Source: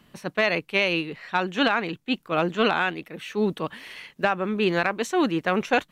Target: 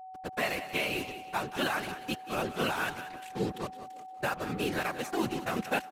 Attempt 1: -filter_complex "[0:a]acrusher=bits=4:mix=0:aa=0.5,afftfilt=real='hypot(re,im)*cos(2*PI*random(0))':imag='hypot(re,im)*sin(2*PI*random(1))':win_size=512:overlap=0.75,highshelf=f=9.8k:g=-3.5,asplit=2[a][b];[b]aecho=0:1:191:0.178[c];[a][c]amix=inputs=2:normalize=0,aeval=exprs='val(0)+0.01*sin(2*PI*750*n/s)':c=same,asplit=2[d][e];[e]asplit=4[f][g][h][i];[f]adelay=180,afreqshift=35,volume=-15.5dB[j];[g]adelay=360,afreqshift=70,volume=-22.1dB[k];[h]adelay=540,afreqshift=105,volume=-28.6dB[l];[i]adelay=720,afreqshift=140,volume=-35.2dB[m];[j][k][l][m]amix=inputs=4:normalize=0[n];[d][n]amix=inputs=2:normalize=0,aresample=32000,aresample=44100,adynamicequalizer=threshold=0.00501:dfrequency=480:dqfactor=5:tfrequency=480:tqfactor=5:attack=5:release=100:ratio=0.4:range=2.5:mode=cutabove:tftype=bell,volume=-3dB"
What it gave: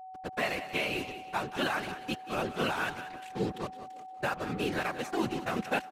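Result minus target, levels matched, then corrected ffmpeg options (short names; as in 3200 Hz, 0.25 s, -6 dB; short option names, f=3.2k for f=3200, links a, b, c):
8000 Hz band -3.0 dB
-filter_complex "[0:a]acrusher=bits=4:mix=0:aa=0.5,afftfilt=real='hypot(re,im)*cos(2*PI*random(0))':imag='hypot(re,im)*sin(2*PI*random(1))':win_size=512:overlap=0.75,highshelf=f=9.8k:g=6.5,asplit=2[a][b];[b]aecho=0:1:191:0.178[c];[a][c]amix=inputs=2:normalize=0,aeval=exprs='val(0)+0.01*sin(2*PI*750*n/s)':c=same,asplit=2[d][e];[e]asplit=4[f][g][h][i];[f]adelay=180,afreqshift=35,volume=-15.5dB[j];[g]adelay=360,afreqshift=70,volume=-22.1dB[k];[h]adelay=540,afreqshift=105,volume=-28.6dB[l];[i]adelay=720,afreqshift=140,volume=-35.2dB[m];[j][k][l][m]amix=inputs=4:normalize=0[n];[d][n]amix=inputs=2:normalize=0,aresample=32000,aresample=44100,adynamicequalizer=threshold=0.00501:dfrequency=480:dqfactor=5:tfrequency=480:tqfactor=5:attack=5:release=100:ratio=0.4:range=2.5:mode=cutabove:tftype=bell,volume=-3dB"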